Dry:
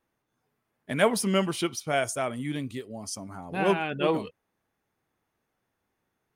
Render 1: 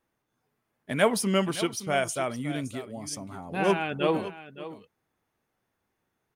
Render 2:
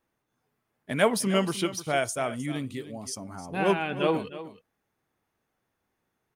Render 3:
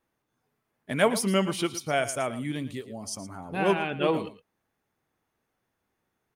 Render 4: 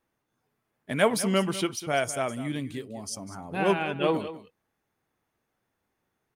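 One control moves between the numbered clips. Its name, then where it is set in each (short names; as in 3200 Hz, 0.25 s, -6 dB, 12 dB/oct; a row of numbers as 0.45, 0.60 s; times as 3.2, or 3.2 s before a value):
echo, time: 0.567, 0.308, 0.114, 0.199 s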